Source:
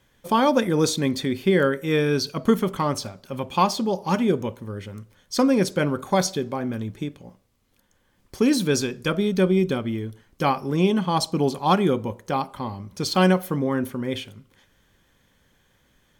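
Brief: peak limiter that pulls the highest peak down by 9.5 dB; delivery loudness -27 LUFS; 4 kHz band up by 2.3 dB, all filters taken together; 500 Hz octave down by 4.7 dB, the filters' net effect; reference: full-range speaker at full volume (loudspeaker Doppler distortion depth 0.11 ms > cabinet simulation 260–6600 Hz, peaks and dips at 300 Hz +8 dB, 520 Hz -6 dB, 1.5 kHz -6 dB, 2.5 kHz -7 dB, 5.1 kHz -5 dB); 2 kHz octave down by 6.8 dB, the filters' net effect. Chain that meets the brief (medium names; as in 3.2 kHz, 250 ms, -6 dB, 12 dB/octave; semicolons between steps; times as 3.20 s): peaking EQ 500 Hz -4 dB; peaking EQ 2 kHz -3.5 dB; peaking EQ 4 kHz +6.5 dB; peak limiter -16 dBFS; loudspeaker Doppler distortion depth 0.11 ms; cabinet simulation 260–6600 Hz, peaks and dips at 300 Hz +8 dB, 520 Hz -6 dB, 1.5 kHz -6 dB, 2.5 kHz -7 dB, 5.1 kHz -5 dB; trim +1 dB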